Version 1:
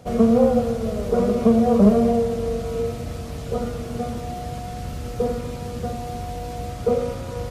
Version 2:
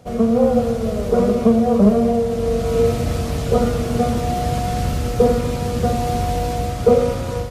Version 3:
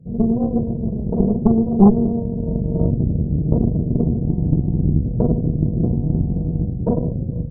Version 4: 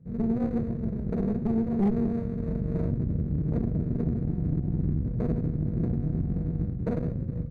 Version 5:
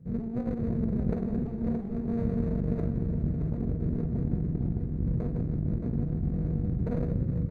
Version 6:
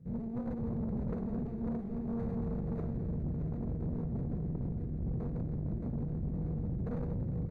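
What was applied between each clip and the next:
automatic gain control gain up to 12 dB; level −1 dB
Gaussian smoothing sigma 24 samples; parametric band 160 Hz +14 dB 0.58 octaves; harmonic generator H 4 −10 dB, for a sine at −1 dBFS; level −1.5 dB
running median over 41 samples; brickwall limiter −9.5 dBFS, peak gain reduction 7.5 dB; level −7.5 dB
compressor whose output falls as the input rises −29 dBFS, ratio −0.5; repeating echo 622 ms, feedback 44%, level −8 dB
soft clipping −26 dBFS, distortion −12 dB; level −3.5 dB

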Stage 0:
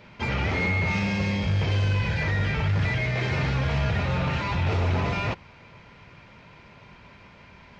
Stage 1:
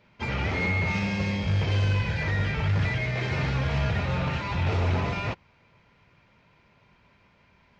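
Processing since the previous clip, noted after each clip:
expander for the loud parts 1.5 to 1, over −44 dBFS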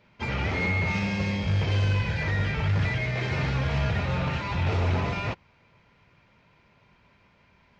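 no processing that can be heard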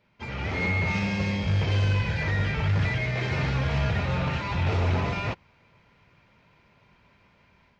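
automatic gain control gain up to 7 dB
level −6.5 dB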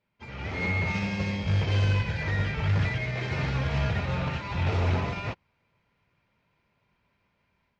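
expander for the loud parts 1.5 to 1, over −45 dBFS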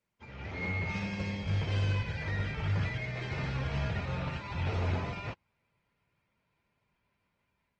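level −6 dB
Opus 20 kbit/s 48,000 Hz

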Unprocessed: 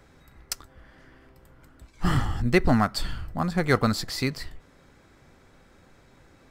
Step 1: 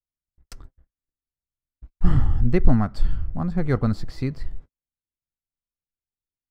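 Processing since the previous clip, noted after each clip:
noise gate −45 dBFS, range −50 dB
spectral tilt −3.5 dB per octave
level −6.5 dB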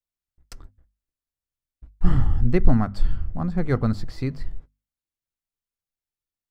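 mains-hum notches 50/100/150/200/250 Hz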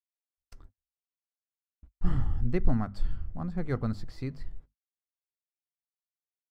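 noise gate −43 dBFS, range −31 dB
level −8.5 dB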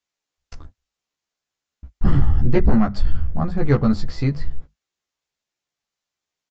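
sine wavefolder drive 9 dB, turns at −10 dBFS
downsampling to 16,000 Hz
double-tracking delay 14 ms −3 dB

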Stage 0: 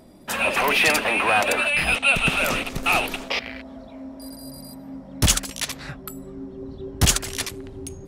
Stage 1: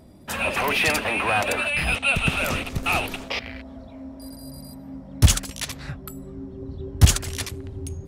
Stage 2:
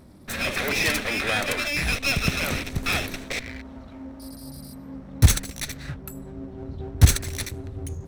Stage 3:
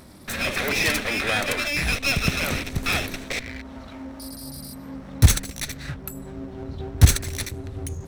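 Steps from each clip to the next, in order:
parametric band 83 Hz +11.5 dB 1.6 octaves; level −3 dB
lower of the sound and its delayed copy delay 0.49 ms
one half of a high-frequency compander encoder only; level +1 dB

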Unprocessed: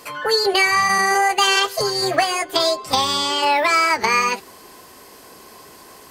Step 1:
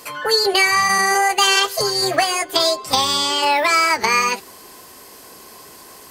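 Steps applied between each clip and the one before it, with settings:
high-shelf EQ 4,700 Hz +5.5 dB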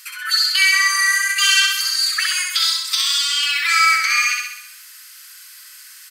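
Butterworth high-pass 1,300 Hz 72 dB per octave
repeating echo 65 ms, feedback 58%, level −3 dB

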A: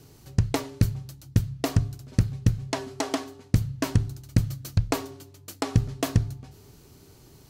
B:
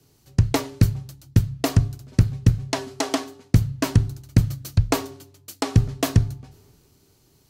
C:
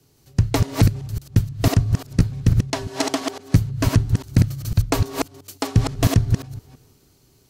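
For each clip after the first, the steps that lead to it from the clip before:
multiband upward and downward expander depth 40%; level +4 dB
delay that plays each chunk backwards 169 ms, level −2.5 dB

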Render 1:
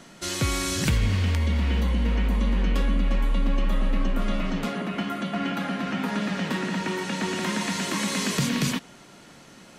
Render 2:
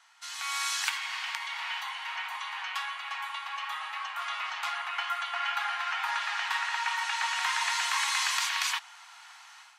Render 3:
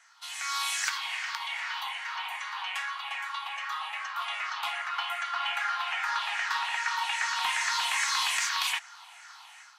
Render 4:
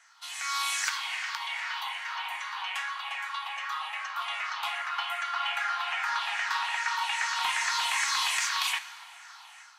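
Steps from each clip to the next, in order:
Butterworth high-pass 790 Hz 72 dB per octave; high-shelf EQ 7,000 Hz −8 dB; automatic gain control gain up to 11.5 dB; level −8.5 dB
rippled gain that drifts along the octave scale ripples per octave 0.52, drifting −2.5 Hz, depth 9 dB; in parallel at −3 dB: soft clipping −22 dBFS, distortion −18 dB; on the sum: level −4.5 dB
dense smooth reverb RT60 2.1 s, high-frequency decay 0.75×, DRR 12.5 dB

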